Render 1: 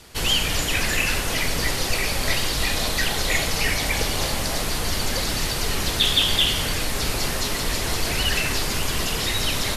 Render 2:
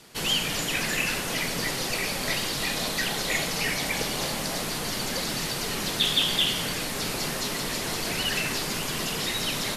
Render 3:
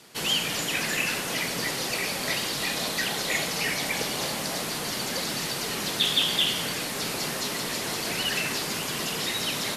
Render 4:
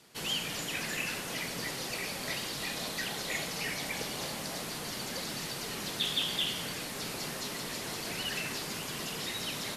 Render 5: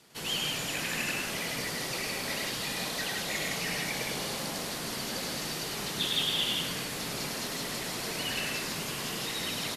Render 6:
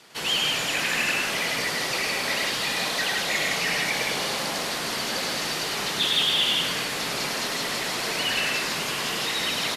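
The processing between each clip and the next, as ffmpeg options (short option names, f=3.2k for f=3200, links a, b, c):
-af "lowshelf=f=110:t=q:w=1.5:g=-11,volume=-4dB"
-af "highpass=f=140:p=1"
-af "lowshelf=f=120:g=5.5,volume=-8dB"
-af "aecho=1:1:102|163.3:0.708|0.631"
-filter_complex "[0:a]asplit=2[a][b];[b]highpass=f=720:p=1,volume=10dB,asoftclip=type=tanh:threshold=-16dB[c];[a][c]amix=inputs=2:normalize=0,lowpass=f=4.2k:p=1,volume=-6dB,volume=5dB"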